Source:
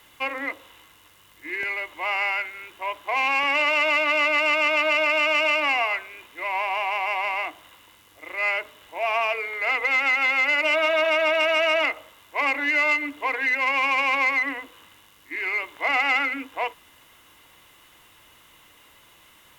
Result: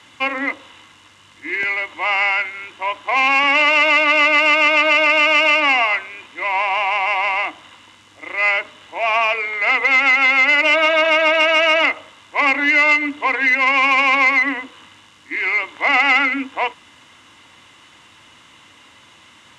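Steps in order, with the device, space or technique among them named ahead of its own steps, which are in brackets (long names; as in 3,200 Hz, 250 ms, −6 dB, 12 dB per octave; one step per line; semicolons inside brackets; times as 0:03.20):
car door speaker (loudspeaker in its box 88–7,900 Hz, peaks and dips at 100 Hz +3 dB, 250 Hz +5 dB, 430 Hz −5 dB, 660 Hz −3 dB)
level +7.5 dB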